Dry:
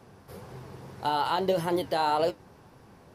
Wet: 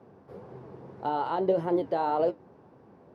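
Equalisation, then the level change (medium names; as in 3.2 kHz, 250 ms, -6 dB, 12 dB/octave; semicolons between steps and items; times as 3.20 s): band-pass filter 380 Hz, Q 0.71; +2.0 dB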